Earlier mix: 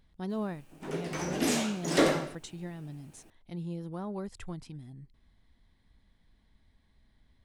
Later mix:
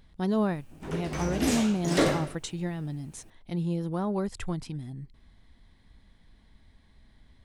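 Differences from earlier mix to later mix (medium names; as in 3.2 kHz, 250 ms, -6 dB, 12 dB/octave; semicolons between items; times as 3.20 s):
speech +8.0 dB; background: remove high-pass 170 Hz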